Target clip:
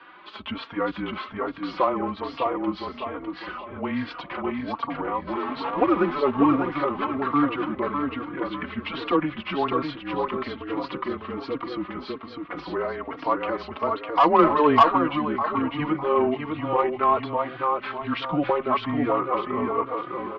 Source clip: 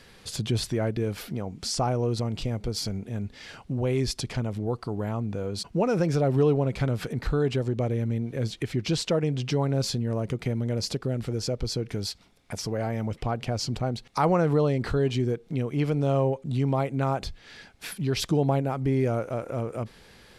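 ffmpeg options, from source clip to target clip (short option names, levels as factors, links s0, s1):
-filter_complex "[0:a]asettb=1/sr,asplit=3[s0][s1][s2];[s0]atrim=end=5.274[s3];[s1]atrim=start=5.27:end=6.2,asetpts=PTS-STARTPTS,afade=t=in:d=0.004:c=qsin,afade=t=out:st=0.926:d=0.004:c=qsin,aeval=exprs='val(0)+0.5*0.0282*sgn(val(0))':c=same[s4];[s2]atrim=start=6.196[s5];[s3][s4]acrossfade=d=0.004:c1=hsin:c2=qsin[s6];[s6][s5]acrossfade=d=0.004:c1=qsin:c2=hsin,asplit=2[s7][s8];[s8]aecho=0:1:603|1206|1809|2412|3015:0.668|0.254|0.0965|0.0367|0.0139[s9];[s7][s9]amix=inputs=2:normalize=0,asettb=1/sr,asplit=3[s10][s11][s12];[s10]atrim=end=14.384[s13];[s11]atrim=start=14.38:end=14.83,asetpts=PTS-STARTPTS,afade=t=in:d=0.004:c=qsin,afade=t=out:st=0.446:d=0.004:c=qsin,acontrast=58[s14];[s12]atrim=start=14.826[s15];[s13][s14]acrossfade=d=0.004:c1=hsin:c2=qsin[s16];[s16][s15]acrossfade=d=0.004:c1=qsin:c2=hsin,highpass=f=390:t=q:w=0.5412,highpass=f=390:t=q:w=1.307,lowpass=f=3400:t=q:w=0.5176,lowpass=f=3400:t=q:w=0.7071,lowpass=f=3400:t=q:w=1.932,afreqshift=-150,equalizer=f=1100:w=1.9:g=14.5,asoftclip=type=tanh:threshold=0.355,asplit=2[s17][s18];[s18]adelay=3.7,afreqshift=1.2[s19];[s17][s19]amix=inputs=2:normalize=1,volume=1.78"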